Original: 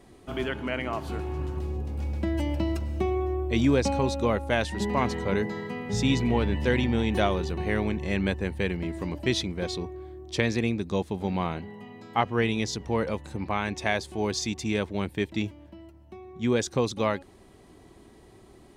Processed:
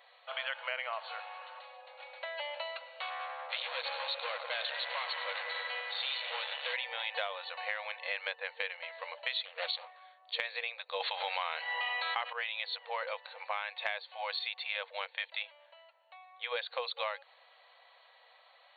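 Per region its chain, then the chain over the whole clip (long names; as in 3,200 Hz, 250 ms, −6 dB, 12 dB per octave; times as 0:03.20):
0:03.00–0:06.74: parametric band 3,800 Hz +10 dB 1.4 octaves + delay with a low-pass on its return 97 ms, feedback 81%, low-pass 2,700 Hz, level −12.5 dB + tube saturation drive 28 dB, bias 0.35
0:09.45–0:10.00: high-shelf EQ 3,700 Hz +8.5 dB + highs frequency-modulated by the lows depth 0.56 ms
0:11.00–0:12.33: tilt shelving filter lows −5.5 dB, about 680 Hz + envelope flattener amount 70%
whole clip: brick-wall band-pass 470–4,500 Hz; tilt shelving filter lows −7.5 dB, about 750 Hz; downward compressor 6 to 1, threshold −29 dBFS; level −3 dB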